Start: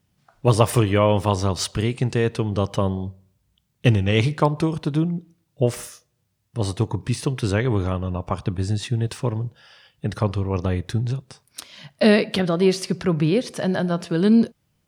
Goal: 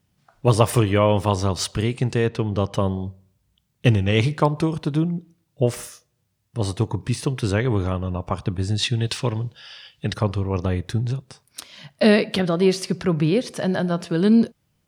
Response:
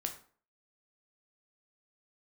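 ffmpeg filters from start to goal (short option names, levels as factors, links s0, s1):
-filter_complex "[0:a]asettb=1/sr,asplit=3[s0][s1][s2];[s0]atrim=end=2.264[s3];[s1]atrim=start=2.26:end=2.74,asetpts=PTS-STARTPTS,afade=t=in:d=0.004:c=qsin,afade=t=out:st=0.476:d=0.004:c=qsin,adynamicsmooth=sensitivity=3:basefreq=5900[s4];[s2]atrim=start=2.736[s5];[s3][s4]acrossfade=d=0.004:c1=hsin:c2=qsin[s6];[s6][s5]acrossfade=d=0.004:c1=qsin:c2=hsin,asettb=1/sr,asplit=3[s7][s8][s9];[s7]atrim=end=8.784[s10];[s8]atrim=start=8.78:end=10.14,asetpts=PTS-STARTPTS,afade=t=in:d=0.004:c=qsin,afade=t=out:st=1.356:d=0.004:c=qsin,equalizer=f=3700:w=0.64:g=11[s11];[s9]atrim=start=10.136[s12];[s10][s11]acrossfade=d=0.004:c1=hsin:c2=qsin[s13];[s13][s12]acrossfade=d=0.004:c1=qsin:c2=hsin"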